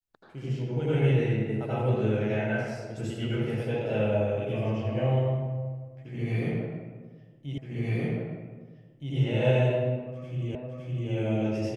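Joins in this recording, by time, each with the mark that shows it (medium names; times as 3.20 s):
7.58 s: repeat of the last 1.57 s
10.55 s: repeat of the last 0.56 s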